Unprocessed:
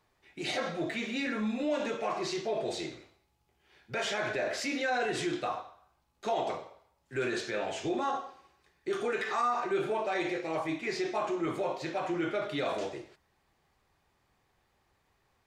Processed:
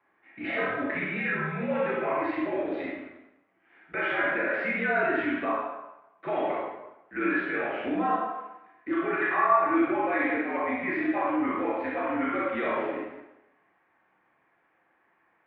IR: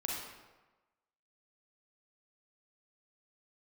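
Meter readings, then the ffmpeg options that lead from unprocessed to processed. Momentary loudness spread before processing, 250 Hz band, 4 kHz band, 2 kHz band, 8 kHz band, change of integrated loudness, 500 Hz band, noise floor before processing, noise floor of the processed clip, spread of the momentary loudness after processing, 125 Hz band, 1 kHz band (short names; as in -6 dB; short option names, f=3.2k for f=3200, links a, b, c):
9 LU, +6.0 dB, -8.5 dB, +8.0 dB, under -35 dB, +5.0 dB, +3.0 dB, -74 dBFS, -69 dBFS, 12 LU, +2.5 dB, +6.0 dB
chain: -filter_complex "[0:a]crystalizer=i=7.5:c=0[a];[1:a]atrim=start_sample=2205,asetrate=57330,aresample=44100[b];[a][b]afir=irnorm=-1:irlink=0,highpass=f=210:t=q:w=0.5412,highpass=f=210:t=q:w=1.307,lowpass=f=2.2k:t=q:w=0.5176,lowpass=f=2.2k:t=q:w=0.7071,lowpass=f=2.2k:t=q:w=1.932,afreqshift=-59,volume=2dB"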